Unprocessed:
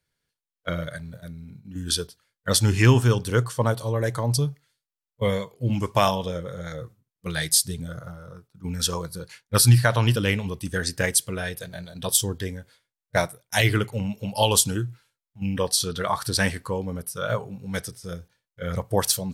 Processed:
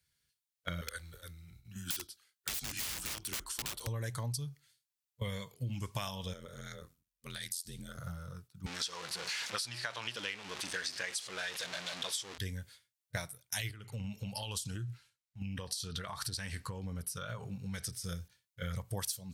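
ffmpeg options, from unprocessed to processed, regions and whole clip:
-filter_complex "[0:a]asettb=1/sr,asplit=3[s0][s1][s2];[s0]atrim=end=0.814[s3];[s1]atrim=start=0.81:end=3.87,asetpts=PTS-STARTPTS,afade=t=in:d=0.004:c=qsin,afade=t=out:st=3.056:d=0.004:c=qsin,highpass=310,afreqshift=-82,aeval=exprs='(mod(15*val(0)+1,2)-1)/15':c=same[s4];[s2]atrim=start=3.866[s5];[s3][s4]acrossfade=d=0.004:c1=hsin:c2=qsin[s6];[s6][s5]acrossfade=d=0.004:c1=qsin:c2=hsin,asettb=1/sr,asplit=3[s7][s8][s9];[s7]atrim=end=6.334[s10];[s8]atrim=start=6.33:end=7.99,asetpts=PTS-STARTPTS,afade=t=in:d=0.004:c=qsin,afade=t=out:st=1.656:d=0.004:c=qsin,equalizer=f=110:w=1.7:g=-13.5,acompressor=threshold=0.02:ratio=5:attack=3.2:release=140:knee=1:detection=peak,aeval=exprs='val(0)*sin(2*PI*43*n/s)':c=same[s11];[s9]atrim=start=7.986[s12];[s10][s11]acrossfade=d=0.004:c1=hsin:c2=qsin[s13];[s13][s12]acrossfade=d=0.004:c1=qsin:c2=hsin,asettb=1/sr,asplit=3[s14][s15][s16];[s14]atrim=end=8.664[s17];[s15]atrim=start=8.66:end=12.38,asetpts=PTS-STARTPTS,afade=t=in:d=0.004:c=qsin,afade=t=out:st=3.716:d=0.004:c=qsin,aeval=exprs='val(0)+0.5*0.0596*sgn(val(0))':c=same,highpass=460,lowpass=5200[s18];[s16]atrim=start=12.376[s19];[s17][s18]acrossfade=d=0.004:c1=hsin:c2=qsin[s20];[s20][s19]acrossfade=d=0.004:c1=qsin:c2=hsin,asettb=1/sr,asplit=3[s21][s22][s23];[s21]atrim=end=13.714[s24];[s22]atrim=start=13.71:end=17.93,asetpts=PTS-STARTPTS,afade=t=in:d=0.004:c=qsin,afade=t=out:st=4.216:d=0.004:c=qsin,highshelf=f=9600:g=-11.5,acompressor=threshold=0.0316:ratio=16:attack=3.2:release=140:knee=1:detection=peak,bandreject=f=3400:w=26[s25];[s23]atrim=start=17.926[s26];[s24][s25]acrossfade=d=0.004:c1=hsin:c2=qsin[s27];[s27][s26]acrossfade=d=0.004:c1=qsin:c2=hsin,equalizer=f=490:w=0.34:g=-14,acompressor=threshold=0.0126:ratio=12,highpass=45,volume=1.5"

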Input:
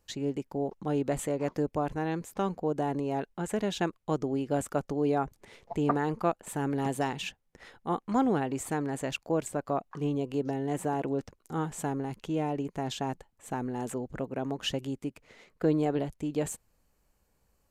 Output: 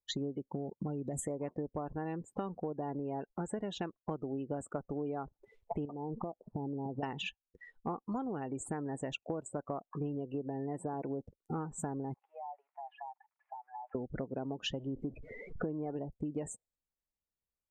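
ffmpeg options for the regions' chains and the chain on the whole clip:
-filter_complex "[0:a]asettb=1/sr,asplit=3[s0][s1][s2];[s0]atrim=end=0.524[s3];[s1]atrim=start=0.52:end=1.21,asetpts=PTS-STARTPTS,afade=t=in:d=0.004:c=qsin,afade=t=out:st=0.686:d=0.004:c=qsin,bass=f=250:g=7,treble=f=4000:g=13,acompressor=threshold=0.0282:ratio=3:attack=3.2:release=140:knee=1:detection=peak,highpass=75[s4];[s2]atrim=start=1.206[s5];[s3][s4]acrossfade=d=0.004:c1=hsin:c2=qsin[s6];[s6][s5]acrossfade=d=0.004:c1=qsin:c2=hsin,asettb=1/sr,asplit=3[s7][s8][s9];[s7]atrim=end=5.854[s10];[s8]atrim=start=5.85:end=7.03,asetpts=PTS-STARTPTS,afade=t=in:d=0.004:c=qsin,afade=t=out:st=1.176:d=0.004:c=qsin,lowpass=f=1000:w=0.5412,lowpass=f=1000:w=1.3066,acompressor=threshold=0.02:ratio=12:attack=3.2:release=140:knee=1:detection=peak[s11];[s9]atrim=start=7.026[s12];[s10][s11]acrossfade=d=0.004:c1=hsin:c2=qsin[s13];[s13][s12]acrossfade=d=0.004:c1=qsin:c2=hsin,asettb=1/sr,asplit=3[s14][s15][s16];[s14]atrim=end=12.144[s17];[s15]atrim=start=12.14:end=13.95,asetpts=PTS-STARTPTS,afade=t=in:d=0.004:c=qsin,afade=t=out:st=1.806:d=0.004:c=qsin,aeval=exprs='val(0)+0.5*0.00422*sgn(val(0))':c=same,asuperpass=centerf=1300:order=8:qfactor=0.77,acompressor=threshold=0.00501:ratio=6:attack=3.2:release=140:knee=1:detection=peak[s18];[s16]atrim=start=13.946[s19];[s17][s18]acrossfade=d=0.004:c1=hsin:c2=qsin[s20];[s20][s19]acrossfade=d=0.004:c1=qsin:c2=hsin,asettb=1/sr,asplit=3[s21][s22][s23];[s21]atrim=end=14.704[s24];[s22]atrim=start=14.7:end=15.94,asetpts=PTS-STARTPTS,afade=t=in:d=0.004:c=qsin,afade=t=out:st=1.236:d=0.004:c=qsin,aeval=exprs='val(0)+0.5*0.00841*sgn(val(0))':c=same,lowpass=11000,highshelf=f=3800:g=-12[s25];[s23]atrim=start=15.936[s26];[s24][s25]acrossfade=d=0.004:c1=hsin:c2=qsin[s27];[s27][s26]acrossfade=d=0.004:c1=qsin:c2=hsin,afftdn=nr=34:nf=-40,bandreject=f=1600:w=16,acompressor=threshold=0.00891:ratio=12,volume=2.11"

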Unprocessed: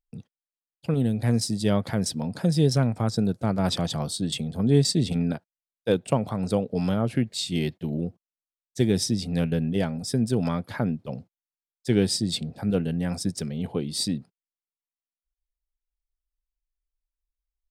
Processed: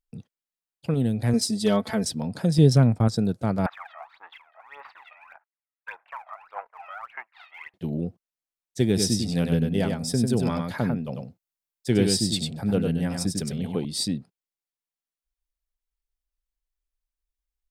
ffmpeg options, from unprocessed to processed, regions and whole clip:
-filter_complex "[0:a]asettb=1/sr,asplit=3[s0][s1][s2];[s0]atrim=end=1.334[s3];[s1]atrim=start=1.33:end=2.04,asetpts=PTS-STARTPTS,afade=t=in:d=0.004:c=qsin,afade=t=out:st=0.706:d=0.004:c=qsin,equalizer=f=160:t=o:w=0.42:g=-13,aecho=1:1:4.6:0.87,atrim=end_sample=31311,asoftclip=type=hard:threshold=0.224[s4];[s2]atrim=start=2.036[s5];[s3][s4]acrossfade=d=0.004:c1=hsin:c2=qsin[s6];[s6][s5]acrossfade=d=0.004:c1=qsin:c2=hsin,asettb=1/sr,asplit=3[s7][s8][s9];[s7]atrim=end=2.584[s10];[s8]atrim=start=2.58:end=3.08,asetpts=PTS-STARTPTS,afade=t=in:d=0.004:c=qsin,afade=t=out:st=0.496:d=0.004:c=qsin,lowshelf=f=390:g=6,agate=range=0.0224:threshold=0.0398:ratio=3:release=100:detection=peak[s11];[s9]atrim=start=3.076[s12];[s10][s11]acrossfade=d=0.004:c1=hsin:c2=qsin[s13];[s13][s12]acrossfade=d=0.004:c1=qsin:c2=hsin,asettb=1/sr,asplit=3[s14][s15][s16];[s14]atrim=end=3.664[s17];[s15]atrim=start=3.66:end=7.74,asetpts=PTS-STARTPTS,afade=t=in:d=0.004:c=qsin,afade=t=out:st=4.076:d=0.004:c=qsin,aeval=exprs='if(lt(val(0),0),0.447*val(0),val(0))':c=same,asuperpass=centerf=1400:order=8:qfactor=0.94,aphaser=in_gain=1:out_gain=1:delay=1.6:decay=0.77:speed=1.7:type=sinusoidal[s18];[s16]atrim=start=7.736[s19];[s17][s18]acrossfade=d=0.004:c1=hsin:c2=qsin[s20];[s20][s19]acrossfade=d=0.004:c1=qsin:c2=hsin,asettb=1/sr,asplit=3[s21][s22][s23];[s21]atrim=end=8.874[s24];[s22]atrim=start=8.87:end=13.85,asetpts=PTS-STARTPTS,afade=t=in:d=0.004:c=qsin,afade=t=out:st=4.976:d=0.004:c=qsin,highshelf=f=8500:g=5,aecho=1:1:98:0.596,atrim=end_sample=219618[s25];[s23]atrim=start=13.846[s26];[s24][s25]acrossfade=d=0.004:c1=hsin:c2=qsin[s27];[s27][s26]acrossfade=d=0.004:c1=qsin:c2=hsin"

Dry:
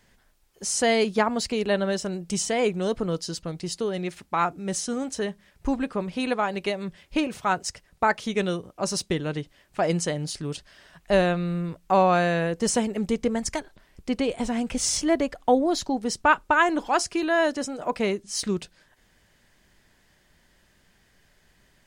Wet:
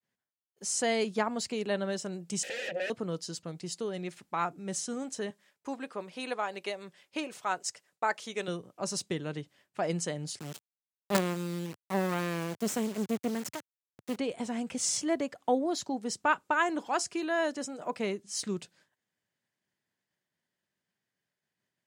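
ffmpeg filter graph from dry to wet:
-filter_complex "[0:a]asettb=1/sr,asplit=3[s0][s1][s2];[s0]atrim=end=2.434[s3];[s1]atrim=start=2.43:end=2.9,asetpts=PTS-STARTPTS,afade=t=in:d=0.004:c=qsin,afade=t=out:st=0.466:d=0.004:c=qsin,highshelf=f=2100:g=4,aeval=exprs='0.237*sin(PI/2*10*val(0)/0.237)':c=same,asplit=3[s4][s5][s6];[s4]bandpass=f=530:t=q:w=8,volume=1[s7];[s5]bandpass=f=1840:t=q:w=8,volume=0.501[s8];[s6]bandpass=f=2480:t=q:w=8,volume=0.355[s9];[s7][s8][s9]amix=inputs=3:normalize=0[s10];[s2]atrim=start=2.896[s11];[s3][s10]acrossfade=d=0.004:c1=hsin:c2=qsin[s12];[s12][s11]acrossfade=d=0.004:c1=qsin:c2=hsin,asettb=1/sr,asplit=3[s13][s14][s15];[s13]atrim=end=5.304[s16];[s14]atrim=start=5.3:end=8.48,asetpts=PTS-STARTPTS,afade=t=in:d=0.004:c=qsin,afade=t=out:st=3.176:d=0.004:c=qsin,highpass=44,bass=f=250:g=-14,treble=f=4000:g=2[s17];[s15]atrim=start=8.476[s18];[s16][s17]acrossfade=d=0.004:c1=hsin:c2=qsin[s19];[s19][s18]acrossfade=d=0.004:c1=qsin:c2=hsin,asettb=1/sr,asplit=3[s20][s21][s22];[s20]atrim=end=10.394[s23];[s21]atrim=start=10.39:end=14.16,asetpts=PTS-STARTPTS,afade=t=in:d=0.004:c=qsin,afade=t=out:st=3.766:d=0.004:c=qsin,equalizer=f=210:w=2.9:g=8,bandreject=f=740:w=6.6,acrusher=bits=3:dc=4:mix=0:aa=0.000001[s24];[s22]atrim=start=14.156[s25];[s23][s24]acrossfade=d=0.004:c1=hsin:c2=qsin[s26];[s26][s25]acrossfade=d=0.004:c1=qsin:c2=hsin,highpass=f=110:w=0.5412,highpass=f=110:w=1.3066,agate=range=0.0224:threshold=0.00251:ratio=3:detection=peak,adynamicequalizer=threshold=0.00447:dfrequency=7400:dqfactor=2.8:tfrequency=7400:tqfactor=2.8:attack=5:release=100:ratio=0.375:range=2.5:mode=boostabove:tftype=bell,volume=0.422"

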